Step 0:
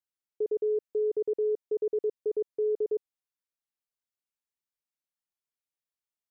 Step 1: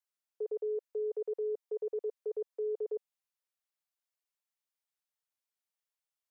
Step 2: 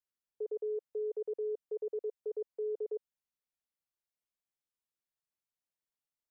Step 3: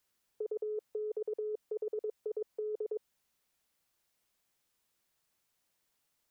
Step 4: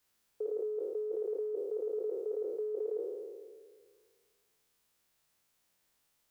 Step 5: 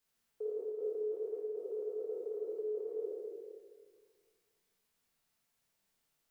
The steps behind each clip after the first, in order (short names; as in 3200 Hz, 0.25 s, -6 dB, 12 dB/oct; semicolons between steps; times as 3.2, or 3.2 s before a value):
inverse Chebyshev high-pass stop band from 190 Hz, stop band 50 dB
low shelf 460 Hz +9.5 dB; gain -6.5 dB
negative-ratio compressor -43 dBFS, ratio -1; gain +7 dB
spectral trails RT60 1.81 s
shoebox room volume 770 m³, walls mixed, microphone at 1.6 m; gain -7 dB